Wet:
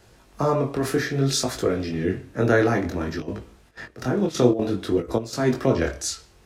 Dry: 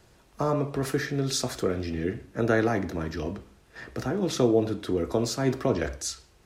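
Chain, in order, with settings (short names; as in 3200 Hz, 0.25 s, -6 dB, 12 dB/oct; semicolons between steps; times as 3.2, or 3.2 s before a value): 3.18–5.43 step gate ".xxx.xx.xxxxx.x." 183 bpm -12 dB; chorus 0.58 Hz, delay 18 ms, depth 7 ms; gain +7.5 dB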